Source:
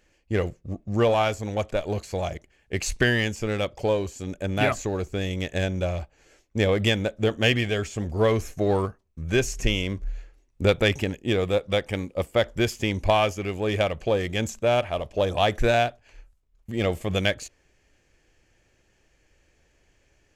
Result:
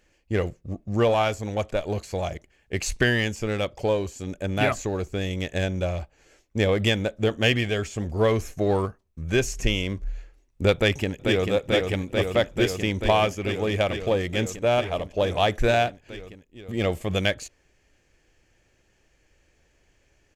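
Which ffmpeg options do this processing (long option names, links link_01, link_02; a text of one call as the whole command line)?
ffmpeg -i in.wav -filter_complex "[0:a]asplit=2[link_01][link_02];[link_02]afade=type=in:start_time=10.75:duration=0.01,afade=type=out:start_time=11.5:duration=0.01,aecho=0:1:440|880|1320|1760|2200|2640|3080|3520|3960|4400|4840|5280:0.595662|0.506313|0.430366|0.365811|0.310939|0.264298|0.224654|0.190956|0.162312|0.137965|0.117271|0.09968[link_03];[link_01][link_03]amix=inputs=2:normalize=0" out.wav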